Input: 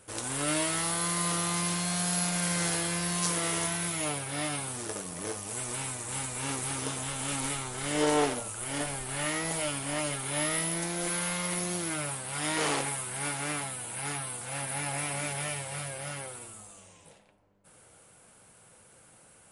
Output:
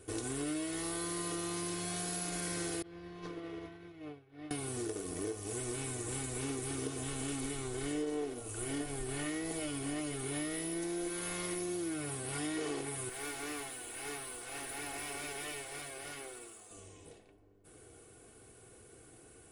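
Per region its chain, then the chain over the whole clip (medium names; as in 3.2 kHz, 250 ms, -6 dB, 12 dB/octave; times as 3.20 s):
2.82–4.51 s: expander -22 dBFS + distance through air 290 m
13.09–16.71 s: frequency weighting A + valve stage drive 34 dB, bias 0.55
whole clip: resonant low shelf 590 Hz +7.5 dB, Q 1.5; comb 2.7 ms, depth 65%; compression, threshold -31 dBFS; trim -4 dB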